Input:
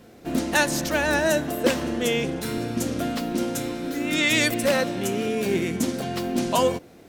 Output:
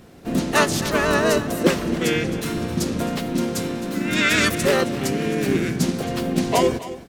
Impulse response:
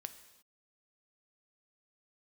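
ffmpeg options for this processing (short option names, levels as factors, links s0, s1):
-filter_complex "[0:a]aecho=1:1:265:0.178,asplit=3[s0][s1][s2];[s1]asetrate=29433,aresample=44100,atempo=1.49831,volume=0.631[s3];[s2]asetrate=33038,aresample=44100,atempo=1.33484,volume=0.708[s4];[s0][s3][s4]amix=inputs=3:normalize=0"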